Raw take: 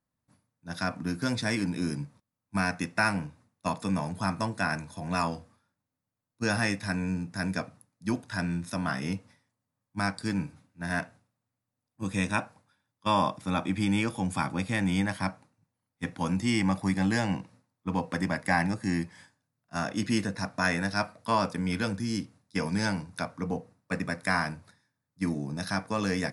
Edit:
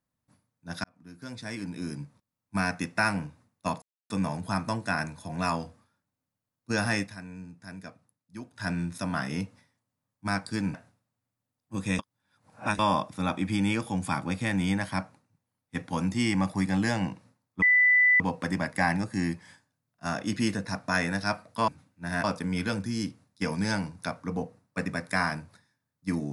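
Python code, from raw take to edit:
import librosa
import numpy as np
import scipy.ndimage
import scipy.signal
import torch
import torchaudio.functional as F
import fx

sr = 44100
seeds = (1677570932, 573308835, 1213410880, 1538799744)

y = fx.edit(x, sr, fx.fade_in_span(start_s=0.84, length_s=1.72),
    fx.insert_silence(at_s=3.82, length_s=0.28),
    fx.fade_down_up(start_s=6.74, length_s=1.63, db=-12.0, fade_s=0.13),
    fx.move(start_s=10.46, length_s=0.56, to_s=21.38),
    fx.reverse_span(start_s=12.27, length_s=0.8),
    fx.insert_tone(at_s=17.9, length_s=0.58, hz=1990.0, db=-17.0), tone=tone)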